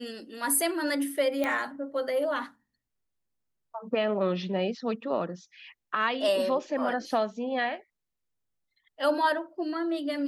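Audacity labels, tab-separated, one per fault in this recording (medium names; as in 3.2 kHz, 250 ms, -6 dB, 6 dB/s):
1.440000	1.440000	pop -16 dBFS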